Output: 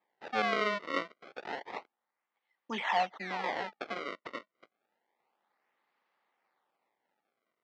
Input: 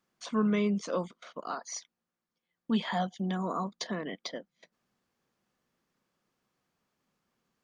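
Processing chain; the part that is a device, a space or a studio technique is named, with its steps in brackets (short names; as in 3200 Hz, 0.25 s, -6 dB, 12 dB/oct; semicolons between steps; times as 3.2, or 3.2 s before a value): circuit-bent sampling toy (decimation with a swept rate 30×, swing 160% 0.29 Hz; speaker cabinet 480–4500 Hz, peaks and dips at 840 Hz +9 dB, 1200 Hz +3 dB, 2000 Hz +8 dB)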